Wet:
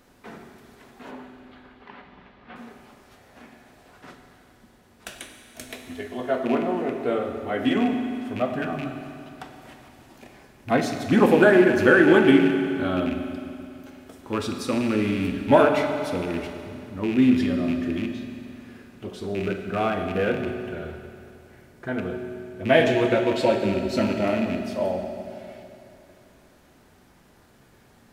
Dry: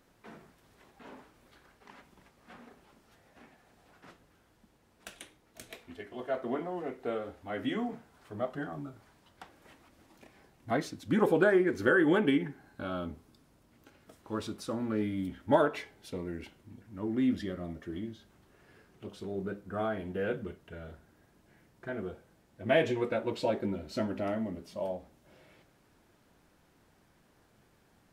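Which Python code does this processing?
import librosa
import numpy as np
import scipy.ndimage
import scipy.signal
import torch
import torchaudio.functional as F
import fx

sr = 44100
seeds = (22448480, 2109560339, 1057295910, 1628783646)

y = fx.rattle_buzz(x, sr, strikes_db=-39.0, level_db=-33.0)
y = fx.lowpass(y, sr, hz=3700.0, slope=24, at=(1.11, 2.56))
y = fx.rev_fdn(y, sr, rt60_s=2.7, lf_ratio=1.0, hf_ratio=0.95, size_ms=24.0, drr_db=4.0)
y = y * 10.0 ** (8.5 / 20.0)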